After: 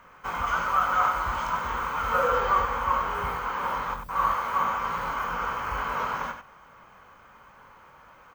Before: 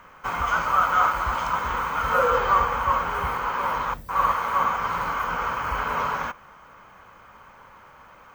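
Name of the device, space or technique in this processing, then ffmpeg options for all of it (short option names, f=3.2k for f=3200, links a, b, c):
slapback doubling: -filter_complex "[0:a]asplit=3[a][b][c];[b]adelay=22,volume=-7dB[d];[c]adelay=97,volume=-8dB[e];[a][d][e]amix=inputs=3:normalize=0,volume=-4.5dB"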